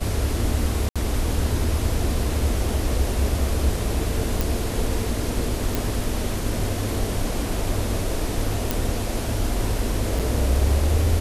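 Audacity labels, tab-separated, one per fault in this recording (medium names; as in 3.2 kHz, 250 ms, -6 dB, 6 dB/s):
0.890000	0.960000	dropout 66 ms
4.410000	4.410000	pop
5.750000	5.750000	pop
8.710000	8.710000	pop
10.190000	10.200000	dropout 6.8 ms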